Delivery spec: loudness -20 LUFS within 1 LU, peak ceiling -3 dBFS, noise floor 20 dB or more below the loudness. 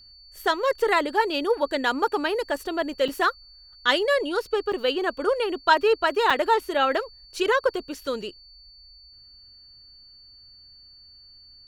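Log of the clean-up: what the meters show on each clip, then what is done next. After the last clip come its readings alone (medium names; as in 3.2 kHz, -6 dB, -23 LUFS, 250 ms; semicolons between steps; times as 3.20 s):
dropouts 3; longest dropout 4.9 ms; steady tone 4.5 kHz; tone level -48 dBFS; loudness -24.0 LUFS; peak level -5.5 dBFS; loudness target -20.0 LUFS
-> interpolate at 3.08/4.72/6.30 s, 4.9 ms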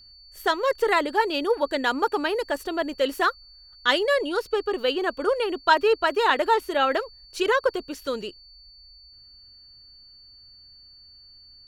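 dropouts 0; steady tone 4.5 kHz; tone level -48 dBFS
-> band-stop 4.5 kHz, Q 30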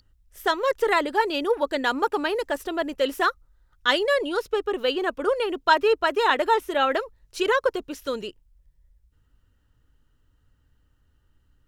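steady tone not found; loudness -24.0 LUFS; peak level -6.0 dBFS; loudness target -20.0 LUFS
-> trim +4 dB; peak limiter -3 dBFS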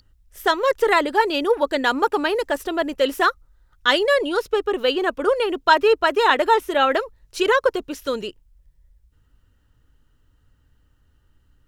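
loudness -20.0 LUFS; peak level -3.0 dBFS; noise floor -61 dBFS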